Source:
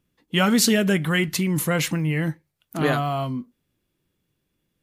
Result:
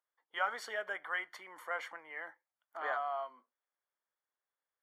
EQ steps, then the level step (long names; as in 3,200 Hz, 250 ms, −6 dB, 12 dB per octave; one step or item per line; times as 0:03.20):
Savitzky-Golay smoothing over 41 samples
high-pass filter 690 Hz 24 dB per octave
−8.0 dB